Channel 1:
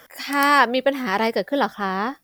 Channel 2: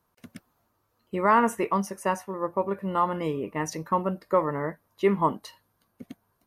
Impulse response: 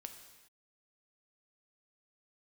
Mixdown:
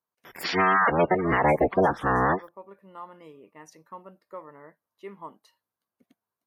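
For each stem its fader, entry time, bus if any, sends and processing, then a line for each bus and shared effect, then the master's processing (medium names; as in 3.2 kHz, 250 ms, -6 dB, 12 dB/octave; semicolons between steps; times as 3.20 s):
+2.5 dB, 0.25 s, no send, cycle switcher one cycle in 3, inverted; spectral gate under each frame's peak -15 dB strong
-16.5 dB, 0.00 s, no send, high-pass 320 Hz 6 dB/octave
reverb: none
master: peak limiter -11.5 dBFS, peak gain reduction 10 dB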